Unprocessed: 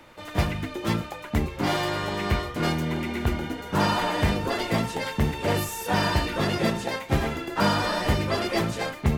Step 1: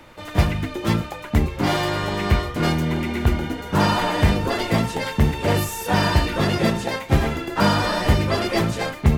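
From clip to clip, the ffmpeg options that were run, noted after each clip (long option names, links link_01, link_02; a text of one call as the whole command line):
ffmpeg -i in.wav -af "lowshelf=frequency=140:gain=5,volume=3.5dB" out.wav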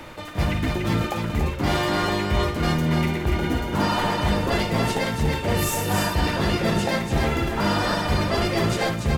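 ffmpeg -i in.wav -af "areverse,acompressor=threshold=-27dB:ratio=6,areverse,aecho=1:1:55.39|288.6:0.282|0.562,volume=6.5dB" out.wav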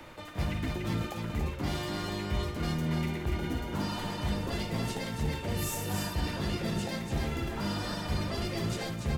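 ffmpeg -i in.wav -filter_complex "[0:a]acrossover=split=320|3000[link_01][link_02][link_03];[link_02]acompressor=threshold=-29dB:ratio=6[link_04];[link_01][link_04][link_03]amix=inputs=3:normalize=0,volume=-8.5dB" out.wav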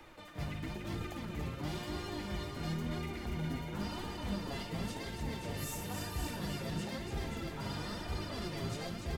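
ffmpeg -i in.wav -af "aecho=1:1:530:0.501,flanger=delay=2.4:depth=5:regen=40:speed=0.98:shape=sinusoidal,volume=-3dB" out.wav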